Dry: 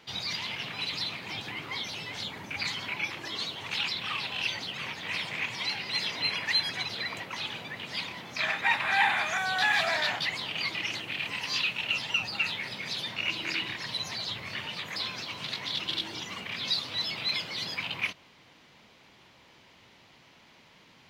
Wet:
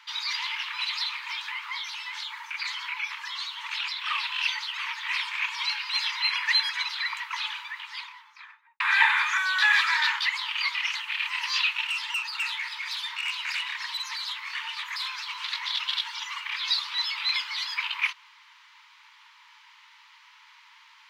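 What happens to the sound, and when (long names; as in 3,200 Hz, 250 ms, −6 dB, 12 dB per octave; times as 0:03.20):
0:01.56–0:04.06: downward compressor 1.5 to 1, threshold −38 dBFS
0:05.20–0:06.05: notch filter 2,000 Hz, Q 11
0:07.46–0:08.80: fade out and dull
0:11.85–0:15.35: tube saturation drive 28 dB, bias 0.2
whole clip: Chebyshev high-pass filter 870 Hz, order 10; high-shelf EQ 4,400 Hz −8 dB; level +7 dB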